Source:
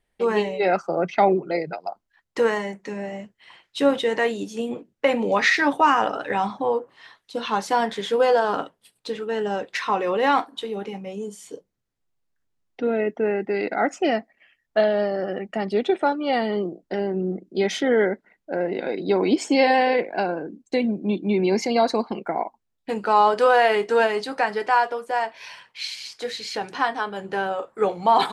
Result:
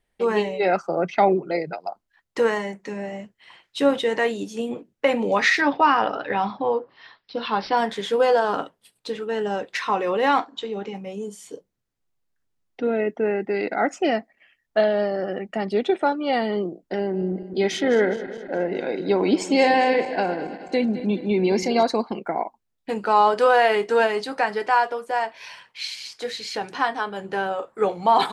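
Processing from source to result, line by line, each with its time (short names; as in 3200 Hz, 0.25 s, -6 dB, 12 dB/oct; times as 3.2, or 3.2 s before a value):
5.61–7.77 careless resampling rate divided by 4×, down none, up filtered
10.38–10.95 brick-wall FIR low-pass 7800 Hz
17.01–21.83 regenerating reverse delay 0.105 s, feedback 73%, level -13.5 dB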